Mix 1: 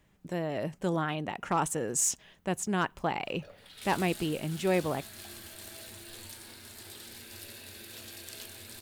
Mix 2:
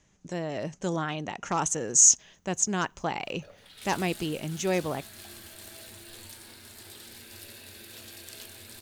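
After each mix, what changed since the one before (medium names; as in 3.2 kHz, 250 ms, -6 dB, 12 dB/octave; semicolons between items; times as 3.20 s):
speech: add resonant low-pass 6.4 kHz, resonance Q 6.7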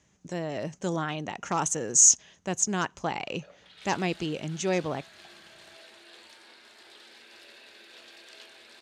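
background: add band-pass 450–4000 Hz; master: add high-pass 62 Hz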